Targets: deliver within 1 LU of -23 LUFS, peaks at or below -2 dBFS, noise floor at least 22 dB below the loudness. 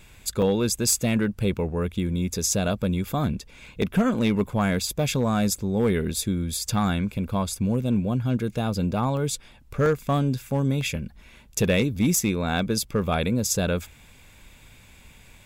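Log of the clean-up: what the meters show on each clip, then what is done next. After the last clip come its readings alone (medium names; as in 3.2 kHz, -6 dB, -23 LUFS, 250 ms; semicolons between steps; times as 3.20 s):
clipped samples 0.5%; clipping level -14.0 dBFS; dropouts 5; longest dropout 1.2 ms; loudness -25.0 LUFS; peak level -14.0 dBFS; loudness target -23.0 LUFS
-> clip repair -14 dBFS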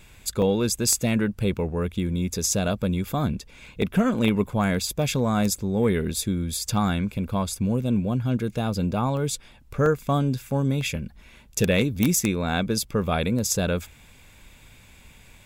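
clipped samples 0.0%; dropouts 5; longest dropout 1.2 ms
-> interpolate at 0.42/3.82/9.17/9.86/10.81 s, 1.2 ms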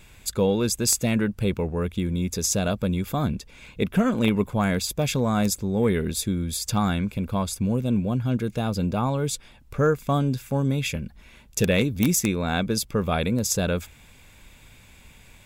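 dropouts 0; loudness -24.5 LUFS; peak level -5.0 dBFS; loudness target -23.0 LUFS
-> trim +1.5 dB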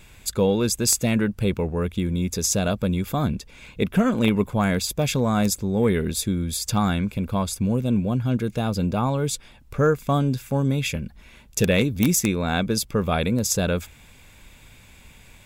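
loudness -23.0 LUFS; peak level -3.5 dBFS; noise floor -50 dBFS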